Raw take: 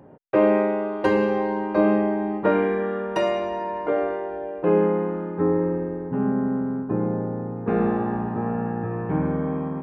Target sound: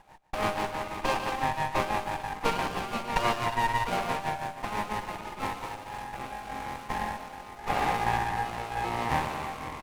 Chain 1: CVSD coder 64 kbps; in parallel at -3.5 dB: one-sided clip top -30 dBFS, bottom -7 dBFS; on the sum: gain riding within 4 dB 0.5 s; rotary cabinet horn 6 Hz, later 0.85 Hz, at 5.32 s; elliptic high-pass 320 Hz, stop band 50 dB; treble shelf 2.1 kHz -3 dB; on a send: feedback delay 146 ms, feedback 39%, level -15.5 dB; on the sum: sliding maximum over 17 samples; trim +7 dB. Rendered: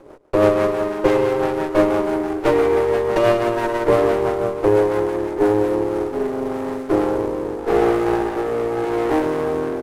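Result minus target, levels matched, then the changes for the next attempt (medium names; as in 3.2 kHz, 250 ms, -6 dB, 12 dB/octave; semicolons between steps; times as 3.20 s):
1 kHz band -8.0 dB
change: elliptic high-pass 810 Hz, stop band 50 dB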